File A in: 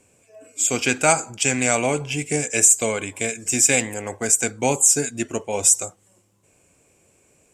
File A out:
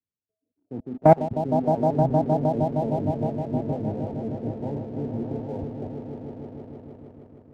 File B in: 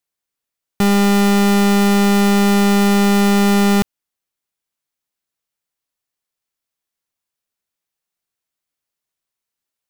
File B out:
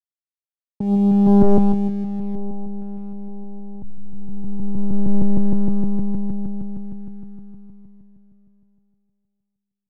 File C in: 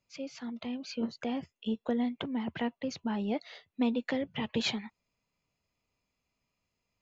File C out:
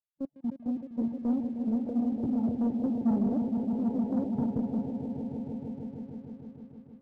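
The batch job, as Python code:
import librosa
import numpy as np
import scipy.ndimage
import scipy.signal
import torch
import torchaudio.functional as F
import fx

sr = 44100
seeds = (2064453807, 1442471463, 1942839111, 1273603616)

y = scipy.signal.sosfilt(scipy.signal.cheby1(6, 3, 930.0, 'lowpass', fs=sr, output='sos'), x)
y = fx.level_steps(y, sr, step_db=19)
y = fx.peak_eq(y, sr, hz=610.0, db=-4.0, octaves=1.3)
y = fx.dereverb_blind(y, sr, rt60_s=1.0)
y = fx.low_shelf(y, sr, hz=420.0, db=7.5)
y = fx.echo_swell(y, sr, ms=155, loudest=5, wet_db=-8)
y = fx.over_compress(y, sr, threshold_db=-20.0, ratio=-0.5)
y = fx.env_lowpass(y, sr, base_hz=480.0, full_db=-19.0)
y = fx.leveller(y, sr, passes=1)
y = fx.band_widen(y, sr, depth_pct=70)
y = F.gain(torch.from_numpy(y), 2.5).numpy()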